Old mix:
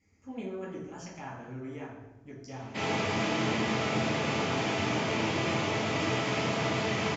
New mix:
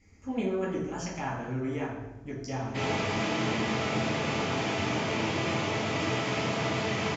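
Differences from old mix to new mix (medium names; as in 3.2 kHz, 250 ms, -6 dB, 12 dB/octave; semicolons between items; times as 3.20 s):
speech +8.0 dB; master: remove high-pass 73 Hz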